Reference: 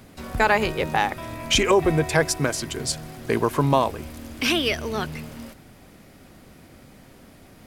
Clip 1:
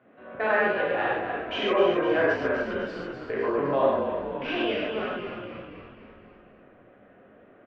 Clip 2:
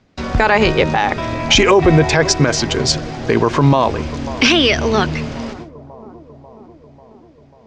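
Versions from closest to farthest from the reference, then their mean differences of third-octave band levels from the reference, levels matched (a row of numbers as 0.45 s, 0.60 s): 2, 1; 7.0 dB, 10.5 dB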